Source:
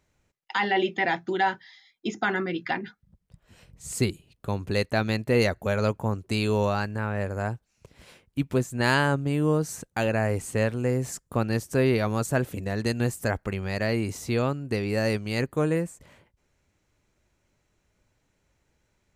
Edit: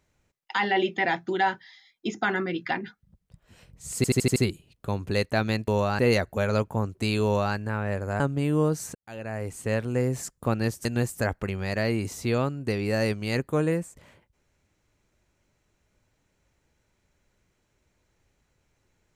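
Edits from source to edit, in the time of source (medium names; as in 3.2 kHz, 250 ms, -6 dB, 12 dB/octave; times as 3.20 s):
3.96 s: stutter 0.08 s, 6 plays
6.53–6.84 s: copy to 5.28 s
7.49–9.09 s: delete
9.84–10.83 s: fade in
11.74–12.89 s: delete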